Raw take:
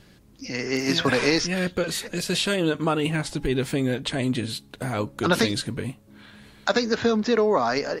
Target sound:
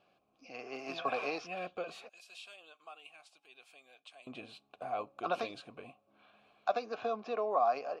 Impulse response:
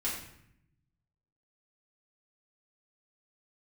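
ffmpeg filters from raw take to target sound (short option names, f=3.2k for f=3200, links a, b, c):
-filter_complex "[0:a]asplit=3[a][b][c];[a]bandpass=f=730:t=q:w=8,volume=0dB[d];[b]bandpass=f=1.09k:t=q:w=8,volume=-6dB[e];[c]bandpass=f=2.44k:t=q:w=8,volume=-9dB[f];[d][e][f]amix=inputs=3:normalize=0,asettb=1/sr,asplit=3[g][h][i];[g]atrim=end=2.094[j];[h]atrim=start=2.09:end=4.27,asetpts=PTS-STARTPTS,afade=t=in:d=0.004:c=qsin,afade=t=out:st=2.176:d=0.004:c=qsin,aderivative[k];[i]atrim=start=4.266[l];[j][k]acrossfade=d=0.004:c1=hsin:c2=qsin[m];[m][l]acrossfade=d=0.004:c1=qsin:c2=hsin"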